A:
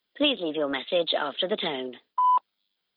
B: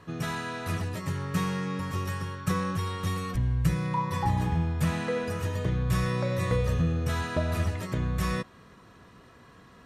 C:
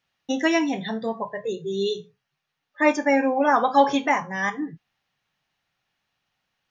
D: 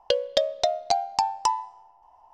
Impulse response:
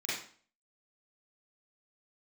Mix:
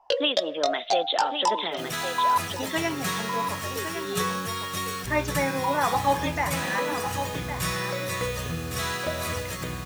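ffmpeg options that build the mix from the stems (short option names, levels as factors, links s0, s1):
-filter_complex "[0:a]agate=range=0.0224:threshold=0.01:ratio=3:detection=peak,volume=0.944,asplit=2[s0][s1];[s1]volume=0.398[s2];[1:a]highshelf=f=2200:g=9,acrusher=bits=6:mix=0:aa=0.000001,adelay=1700,volume=1.06,asplit=2[s3][s4];[s4]volume=0.501[s5];[2:a]adelay=2300,volume=0.562,asplit=2[s6][s7];[s7]volume=0.355[s8];[3:a]flanger=delay=15:depth=6.8:speed=2.3,volume=1.33,asplit=2[s9][s10];[s10]volume=0.15[s11];[s2][s5][s8][s11]amix=inputs=4:normalize=0,aecho=0:1:1110:1[s12];[s0][s3][s6][s9][s12]amix=inputs=5:normalize=0,lowshelf=f=240:g=-11"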